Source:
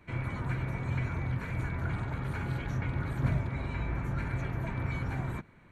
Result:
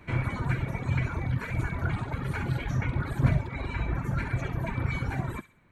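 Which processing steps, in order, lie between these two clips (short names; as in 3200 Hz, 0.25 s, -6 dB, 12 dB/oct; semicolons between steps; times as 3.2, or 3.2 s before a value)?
reverb removal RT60 1.9 s; on a send: thin delay 66 ms, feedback 34%, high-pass 2400 Hz, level -9 dB; on the sum: gain +7 dB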